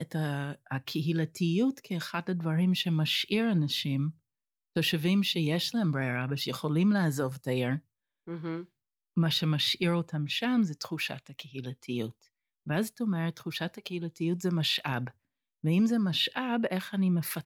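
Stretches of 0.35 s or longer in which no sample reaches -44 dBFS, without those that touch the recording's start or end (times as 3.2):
4.11–4.76
7.79–8.28
8.64–9.17
12.11–12.67
15.1–15.64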